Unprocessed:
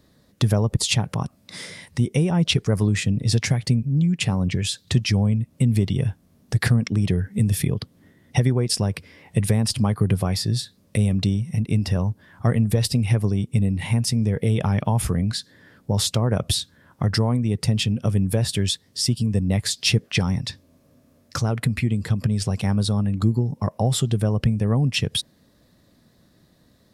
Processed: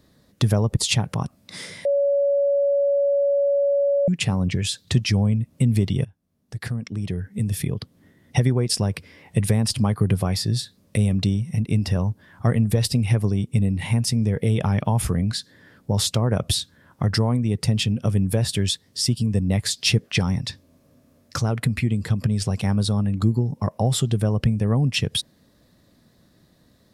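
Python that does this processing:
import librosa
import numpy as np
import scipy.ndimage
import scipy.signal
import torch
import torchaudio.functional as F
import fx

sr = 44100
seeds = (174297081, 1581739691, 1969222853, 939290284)

y = fx.edit(x, sr, fx.bleep(start_s=1.85, length_s=2.23, hz=564.0, db=-16.5),
    fx.fade_in_from(start_s=6.05, length_s=2.36, floor_db=-23.0), tone=tone)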